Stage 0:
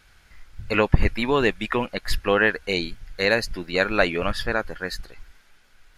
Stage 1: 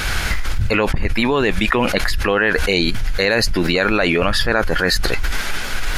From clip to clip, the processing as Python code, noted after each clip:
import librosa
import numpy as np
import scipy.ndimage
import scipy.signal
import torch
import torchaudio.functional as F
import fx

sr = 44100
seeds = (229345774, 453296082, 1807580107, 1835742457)

y = fx.env_flatten(x, sr, amount_pct=100)
y = F.gain(torch.from_numpy(y), -5.0).numpy()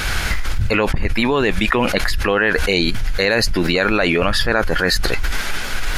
y = x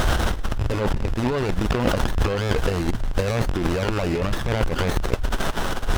y = fx.rattle_buzz(x, sr, strikes_db=-20.0, level_db=-12.0)
y = fx.over_compress(y, sr, threshold_db=-19.0, ratio=-0.5)
y = fx.running_max(y, sr, window=17)